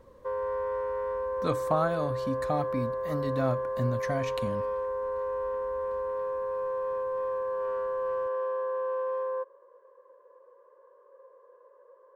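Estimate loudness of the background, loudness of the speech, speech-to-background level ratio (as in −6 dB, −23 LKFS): −32.0 LKFS, −32.5 LKFS, −0.5 dB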